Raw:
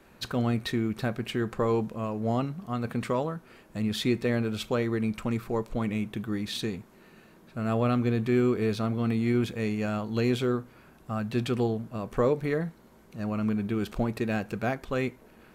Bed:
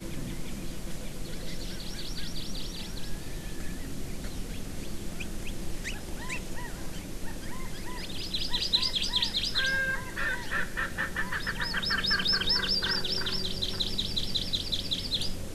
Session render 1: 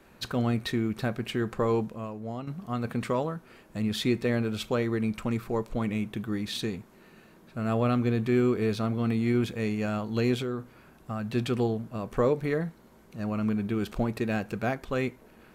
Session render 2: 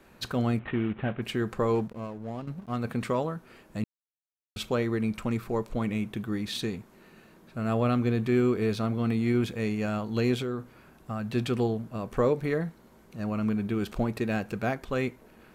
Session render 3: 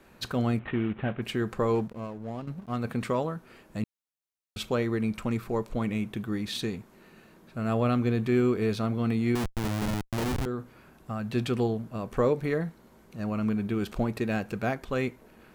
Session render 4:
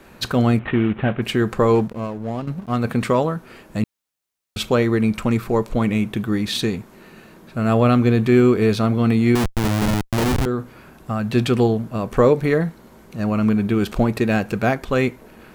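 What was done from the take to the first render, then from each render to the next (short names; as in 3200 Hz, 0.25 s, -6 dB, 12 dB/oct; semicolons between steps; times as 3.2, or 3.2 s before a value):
1.79–2.47 fade out quadratic, to -9.5 dB; 10.34–11.27 compressor 4:1, threshold -28 dBFS
0.59–1.22 CVSD 16 kbps; 1.75–2.77 backlash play -41.5 dBFS; 3.84–4.56 mute
9.35–10.46 Schmitt trigger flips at -26.5 dBFS
gain +10 dB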